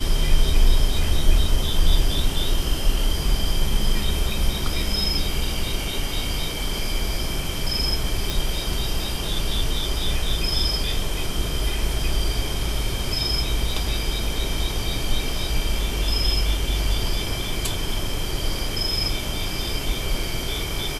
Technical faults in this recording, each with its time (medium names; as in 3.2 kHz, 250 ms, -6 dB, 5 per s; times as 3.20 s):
8.30 s: pop